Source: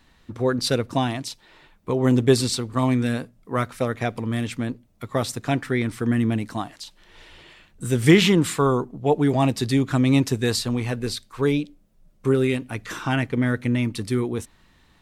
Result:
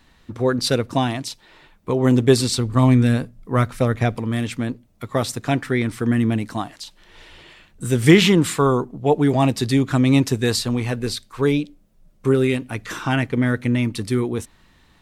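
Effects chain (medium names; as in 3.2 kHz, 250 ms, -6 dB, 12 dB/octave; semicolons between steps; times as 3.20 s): 2.58–4.15 s: bass shelf 140 Hz +12 dB; trim +2.5 dB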